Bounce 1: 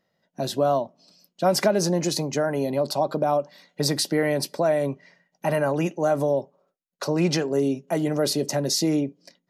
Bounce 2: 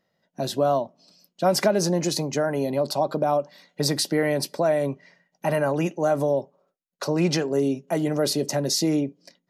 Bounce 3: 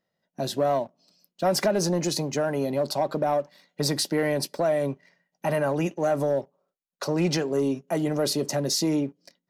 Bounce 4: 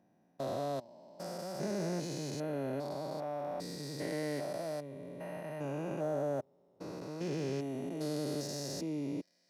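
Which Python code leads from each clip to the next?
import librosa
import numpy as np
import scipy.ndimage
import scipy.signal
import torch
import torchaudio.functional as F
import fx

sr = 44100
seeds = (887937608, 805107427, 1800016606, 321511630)

y1 = x
y2 = fx.leveller(y1, sr, passes=1)
y2 = y2 * 10.0 ** (-5.0 / 20.0)
y3 = fx.spec_steps(y2, sr, hold_ms=400)
y3 = scipy.signal.sosfilt(scipy.signal.butter(2, 55.0, 'highpass', fs=sr, output='sos'), y3)
y3 = y3 * 10.0 ** (-8.0 / 20.0)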